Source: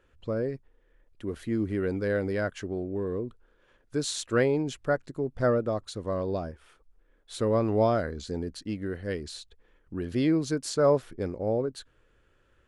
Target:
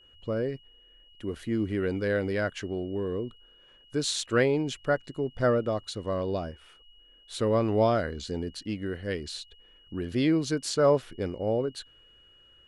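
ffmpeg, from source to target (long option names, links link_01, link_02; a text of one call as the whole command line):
ffmpeg -i in.wav -af "adynamicequalizer=threshold=0.00447:dfrequency=3100:dqfactor=0.85:tfrequency=3100:tqfactor=0.85:attack=5:release=100:ratio=0.375:range=2.5:mode=boostabove:tftype=bell,aeval=exprs='val(0)+0.00158*sin(2*PI*2900*n/s)':channel_layout=same" out.wav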